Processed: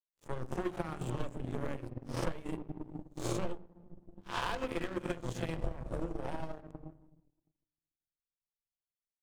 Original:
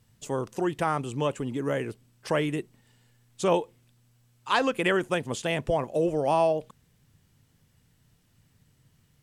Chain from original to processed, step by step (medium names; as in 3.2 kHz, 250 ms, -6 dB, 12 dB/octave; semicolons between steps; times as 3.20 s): reverse spectral sustain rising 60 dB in 0.46 s; Doppler pass-by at 3.22 s, 8 m/s, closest 10 m; level rider gain up to 9 dB; waveshaping leveller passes 3; hum notches 50/100/150 Hz; on a send at -6 dB: tilt EQ -4 dB/octave + reverberation, pre-delay 5 ms; on the sum: power-law waveshaper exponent 2; bass shelf 110 Hz +7.5 dB; compression 12:1, threshold -38 dBFS, peak gain reduction 42 dB; transient shaper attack +3 dB, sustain -2 dB; trim +4.5 dB